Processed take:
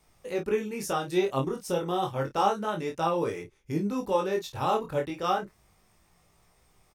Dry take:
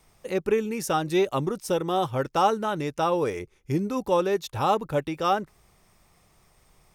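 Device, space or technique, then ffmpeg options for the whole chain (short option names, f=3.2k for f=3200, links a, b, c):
double-tracked vocal: -filter_complex "[0:a]asplit=2[a][b];[b]adelay=30,volume=-8dB[c];[a][c]amix=inputs=2:normalize=0,flanger=delay=17.5:depth=5.3:speed=0.31,volume=-1dB"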